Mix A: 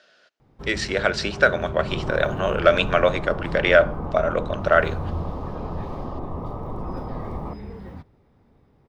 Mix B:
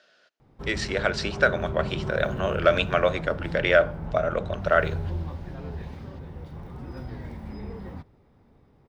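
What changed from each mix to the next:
speech -3.5 dB; second sound: muted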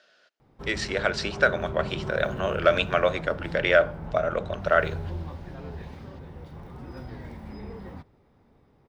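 master: add low shelf 230 Hz -4 dB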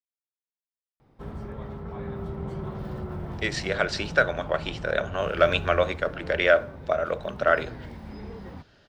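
speech: entry +2.75 s; background: entry +0.60 s

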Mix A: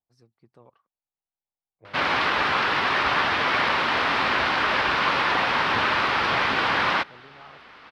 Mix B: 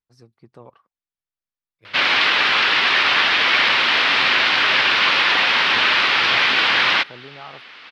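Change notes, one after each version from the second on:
first voice +10.0 dB; second voice: remove synth low-pass 790 Hz, resonance Q 4.6; background: add weighting filter D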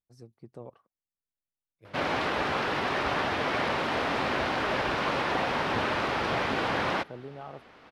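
background: remove weighting filter D; master: add band shelf 2200 Hz -8.5 dB 2.8 oct

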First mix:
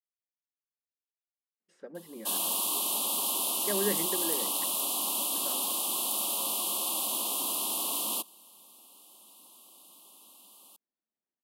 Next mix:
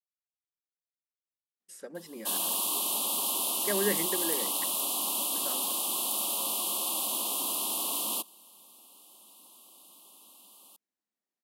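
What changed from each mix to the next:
speech: remove tape spacing loss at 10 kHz 29 dB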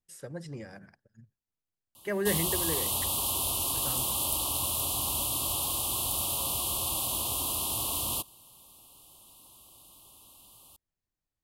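speech: entry -1.60 s; master: remove brick-wall FIR high-pass 180 Hz

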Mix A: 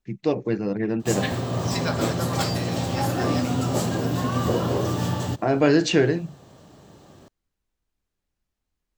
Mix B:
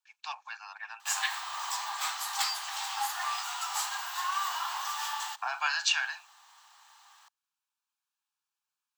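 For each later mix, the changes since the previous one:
first voice: add Butterworth band-stop 2000 Hz, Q 4.9; second voice: muted; master: add steep high-pass 830 Hz 72 dB/oct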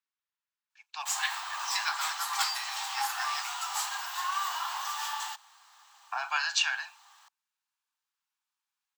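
first voice: entry +0.70 s; second voice: unmuted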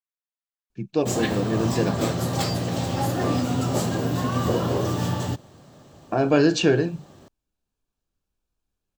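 second voice -9.0 dB; master: remove steep high-pass 830 Hz 72 dB/oct

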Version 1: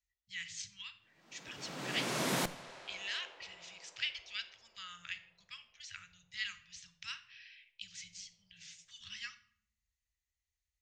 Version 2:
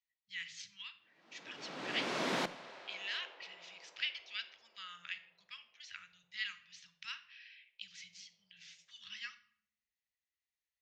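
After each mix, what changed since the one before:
master: add three-band isolator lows -23 dB, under 180 Hz, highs -20 dB, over 5500 Hz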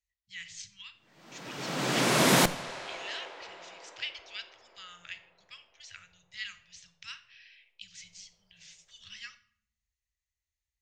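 background +11.5 dB; master: remove three-band isolator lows -23 dB, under 180 Hz, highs -20 dB, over 5500 Hz

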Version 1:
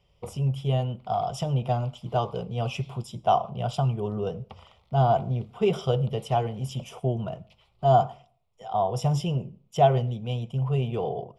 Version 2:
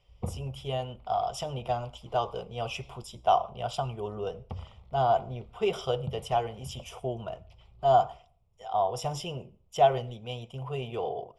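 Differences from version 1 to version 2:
speech: add bell 160 Hz -13.5 dB 1.8 oct; background: add tilt -3.5 dB/oct

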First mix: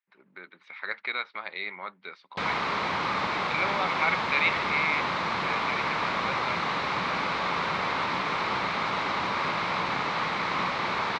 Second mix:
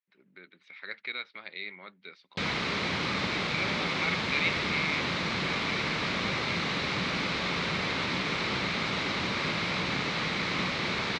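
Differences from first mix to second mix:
background +5.0 dB; master: add bell 970 Hz -14.5 dB 1.6 oct

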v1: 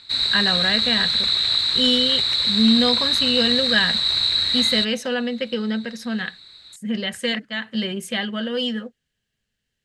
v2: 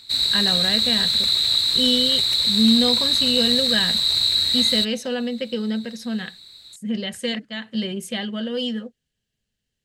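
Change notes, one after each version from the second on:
background: remove air absorption 78 m; master: add bell 1500 Hz -7 dB 1.7 oct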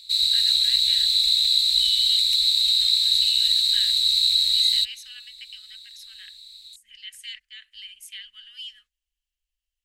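speech: add graphic EQ 125/1000/4000/8000 Hz -4/+10/-10/-6 dB; master: add inverse Chebyshev band-stop 150–890 Hz, stop band 60 dB

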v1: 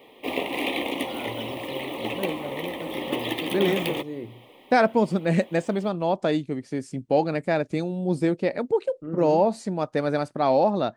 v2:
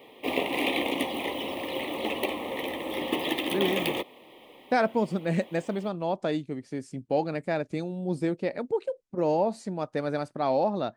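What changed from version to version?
first voice: muted; second voice -5.0 dB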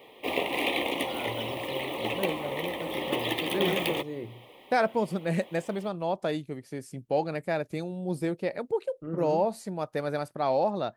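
first voice: unmuted; second voice: remove LPF 8600 Hz 24 dB/oct; master: add bell 260 Hz -5.5 dB 0.67 oct

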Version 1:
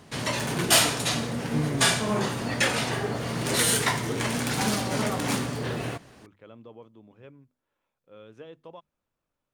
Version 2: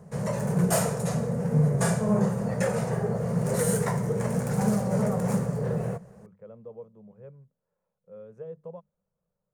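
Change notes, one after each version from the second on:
master: add EQ curve 110 Hz 0 dB, 190 Hz +12 dB, 280 Hz -18 dB, 480 Hz +7 dB, 720 Hz -2 dB, 1800 Hz -10 dB, 3400 Hz -24 dB, 7100 Hz -7 dB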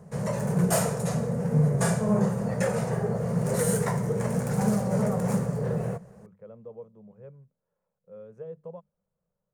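none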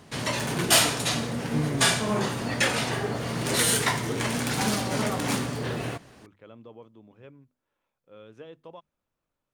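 master: remove EQ curve 110 Hz 0 dB, 190 Hz +12 dB, 280 Hz -18 dB, 480 Hz +7 dB, 720 Hz -2 dB, 1800 Hz -10 dB, 3400 Hz -24 dB, 7100 Hz -7 dB

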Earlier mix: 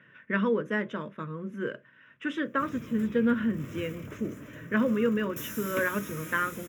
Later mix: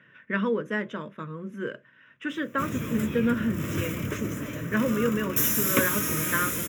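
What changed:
background +11.0 dB; master: add high shelf 4400 Hz +5.5 dB

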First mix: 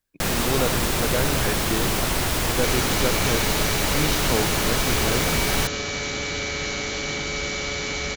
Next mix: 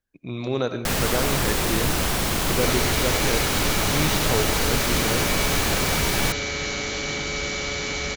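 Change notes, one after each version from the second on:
first sound: entry +0.65 s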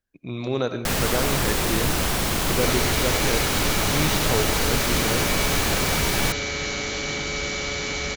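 none

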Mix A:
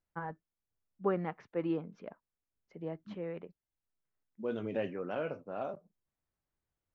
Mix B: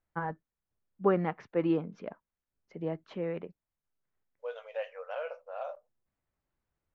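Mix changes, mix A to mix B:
first voice +5.5 dB; second voice: add brick-wall FIR high-pass 460 Hz

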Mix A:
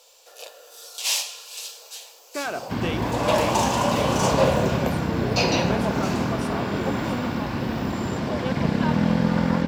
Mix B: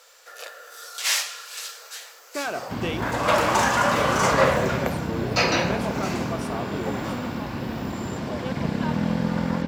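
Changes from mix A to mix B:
first sound: add band shelf 1600 Hz +13 dB 1 oct; second sound -3.5 dB

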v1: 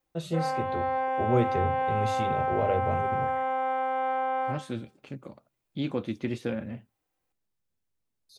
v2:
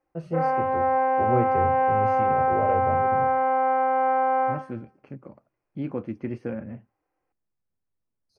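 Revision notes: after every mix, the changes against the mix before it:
background +7.0 dB; master: add running mean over 12 samples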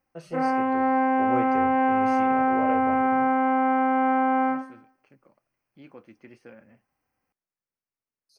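second voice -10.5 dB; background: remove brick-wall FIR high-pass 290 Hz; master: add tilt +4 dB/oct

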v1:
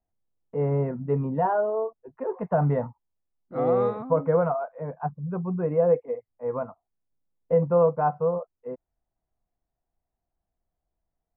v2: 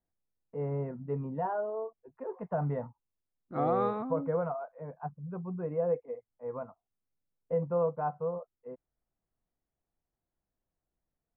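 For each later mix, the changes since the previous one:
first voice -9.0 dB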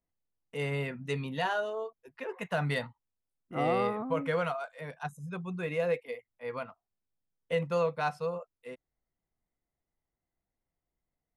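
first voice: remove LPF 1000 Hz 24 dB/oct; master: add high shelf 3300 Hz -7.5 dB

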